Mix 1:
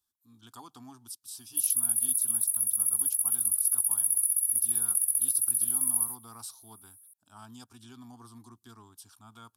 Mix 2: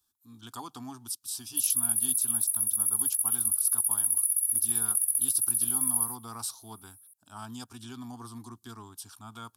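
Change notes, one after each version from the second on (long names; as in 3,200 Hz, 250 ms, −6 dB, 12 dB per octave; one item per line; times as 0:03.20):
speech +7.0 dB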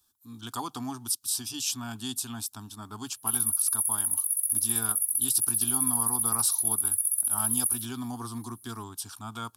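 speech +6.5 dB
background: entry +1.70 s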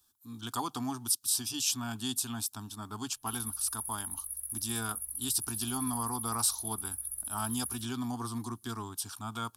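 background: add spectral tilt −3.5 dB per octave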